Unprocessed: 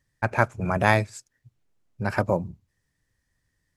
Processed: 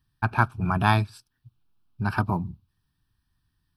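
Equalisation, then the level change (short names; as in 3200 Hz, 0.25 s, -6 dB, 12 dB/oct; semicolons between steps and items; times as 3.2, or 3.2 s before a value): fixed phaser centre 2000 Hz, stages 6; +3.0 dB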